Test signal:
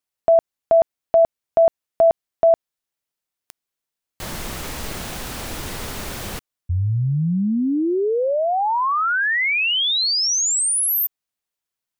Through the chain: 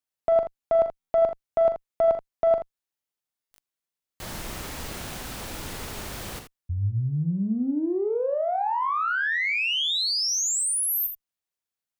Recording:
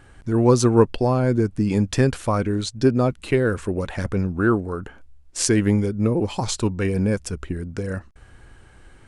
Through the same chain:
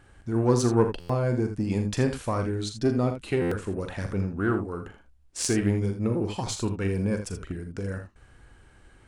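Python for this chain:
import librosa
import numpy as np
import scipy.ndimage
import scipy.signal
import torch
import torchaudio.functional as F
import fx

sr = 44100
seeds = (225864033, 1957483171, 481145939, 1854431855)

p1 = fx.diode_clip(x, sr, knee_db=-7.0)
p2 = p1 + fx.room_early_taps(p1, sr, ms=(41, 61, 80), db=(-10.0, -15.5, -10.0), dry=0)
p3 = fx.buffer_glitch(p2, sr, at_s=(0.99, 3.41), block=512, repeats=8)
y = p3 * librosa.db_to_amplitude(-6.0)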